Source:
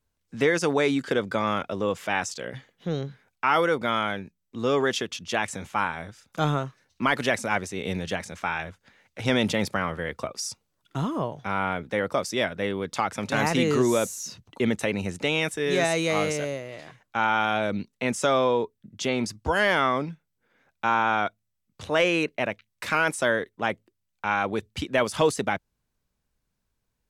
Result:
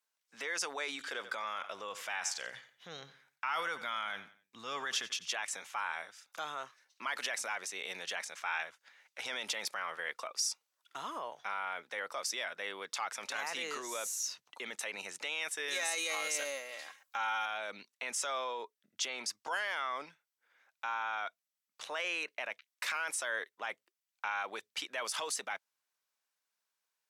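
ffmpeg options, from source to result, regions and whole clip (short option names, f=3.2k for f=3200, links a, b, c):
-filter_complex "[0:a]asettb=1/sr,asplit=3[a][b][c];[a]atrim=end=0.894[d];[b]atrim=start=0.89:end=5.27,asetpts=PTS-STARTPTS,afade=t=in:d=0.004:c=qsin,afade=t=out:st=4.376:d=0.004:c=qsin,asubboost=boost=9:cutoff=150,aecho=1:1:89|178|267:0.133|0.044|0.0145,atrim=end_sample=193158[e];[c]atrim=start=5.266[f];[d][e]acrossfade=d=0.004:c1=hsin:c2=qsin[g];[g][f]acrossfade=d=0.004:c1=qsin:c2=hsin,asettb=1/sr,asplit=3[h][i][j];[h]atrim=end=15.684[k];[i]atrim=start=15.68:end=17.46,asetpts=PTS-STARTPTS,afade=t=in:d=0.004:c=qsin,afade=t=out:st=1.776:d=0.004:c=qsin,highshelf=f=7k:g=11.5,aecho=1:1:3.7:0.52,atrim=end_sample=78498[l];[j]atrim=start=17.456[m];[k][l]acrossfade=d=0.004:c1=hsin:c2=qsin[n];[n][m]acrossfade=d=0.004:c1=qsin:c2=hsin,alimiter=limit=-20dB:level=0:latency=1:release=30,highpass=930,equalizer=f=5.6k:t=o:w=0.26:g=2,volume=-2dB"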